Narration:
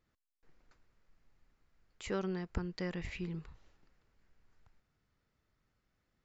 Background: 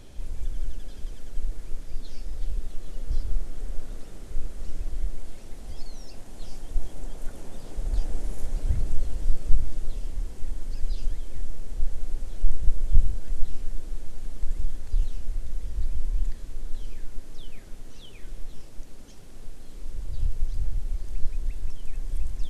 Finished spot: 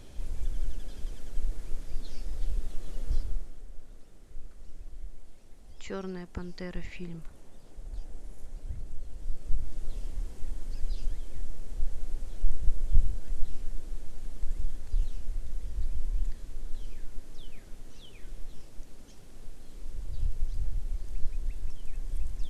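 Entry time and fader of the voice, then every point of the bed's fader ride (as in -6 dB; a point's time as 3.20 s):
3.80 s, -1.0 dB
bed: 3.13 s -1.5 dB
3.66 s -13 dB
9.01 s -13 dB
9.98 s -4 dB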